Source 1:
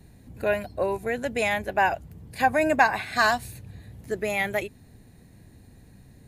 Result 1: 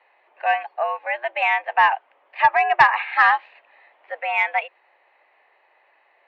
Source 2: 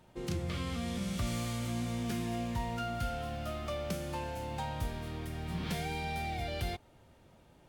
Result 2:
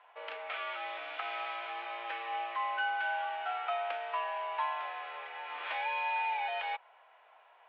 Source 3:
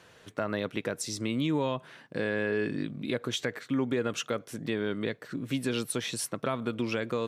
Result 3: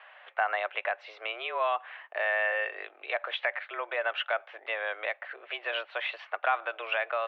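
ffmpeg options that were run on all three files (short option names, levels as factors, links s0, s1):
-af "highpass=f=590:t=q:w=0.5412,highpass=f=590:t=q:w=1.307,lowpass=f=2800:t=q:w=0.5176,lowpass=f=2800:t=q:w=0.7071,lowpass=f=2800:t=q:w=1.932,afreqshift=110,acontrast=76"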